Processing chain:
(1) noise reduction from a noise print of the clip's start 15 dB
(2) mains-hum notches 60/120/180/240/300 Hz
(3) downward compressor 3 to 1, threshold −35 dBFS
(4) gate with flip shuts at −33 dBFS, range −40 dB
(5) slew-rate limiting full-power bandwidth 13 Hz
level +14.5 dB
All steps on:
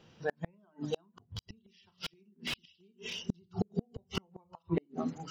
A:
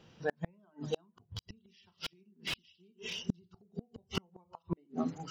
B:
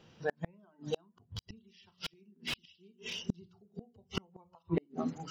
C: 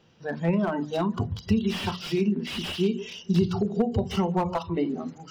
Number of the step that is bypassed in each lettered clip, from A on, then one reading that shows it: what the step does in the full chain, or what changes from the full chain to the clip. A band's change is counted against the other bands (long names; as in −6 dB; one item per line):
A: 2, 125 Hz band −2.5 dB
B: 3, average gain reduction 1.5 dB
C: 4, change in momentary loudness spread −6 LU